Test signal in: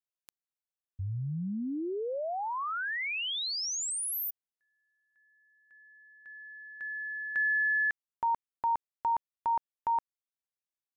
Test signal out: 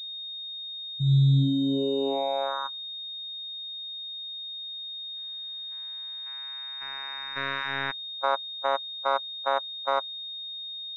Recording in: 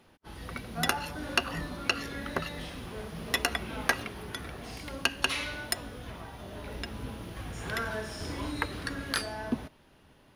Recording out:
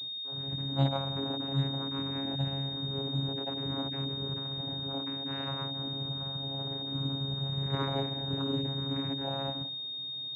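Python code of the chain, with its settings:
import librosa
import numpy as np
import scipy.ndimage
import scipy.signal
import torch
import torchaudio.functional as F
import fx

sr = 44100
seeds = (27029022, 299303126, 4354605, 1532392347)

y = fx.hpss_only(x, sr, part='harmonic')
y = fx.vocoder(y, sr, bands=8, carrier='saw', carrier_hz=137.0)
y = fx.pwm(y, sr, carrier_hz=3700.0)
y = y * 10.0 ** (6.5 / 20.0)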